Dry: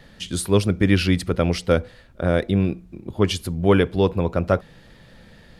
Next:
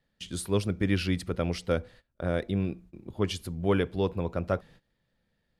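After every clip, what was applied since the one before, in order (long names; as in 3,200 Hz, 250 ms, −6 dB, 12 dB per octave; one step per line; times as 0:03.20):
noise gate −41 dBFS, range −19 dB
level −9 dB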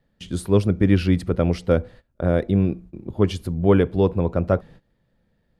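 tilt shelving filter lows +5.5 dB, about 1,400 Hz
level +4.5 dB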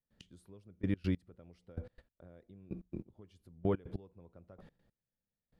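downward compressor, threshold −24 dBFS, peak gain reduction 12.5 dB
gate pattern ".x......x" 144 BPM −24 dB
level −4.5 dB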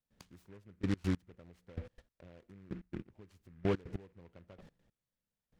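short delay modulated by noise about 1,500 Hz, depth 0.076 ms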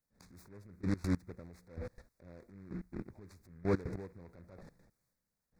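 transient designer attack −9 dB, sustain +6 dB
Butterworth band-reject 3,000 Hz, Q 1.8
level +3.5 dB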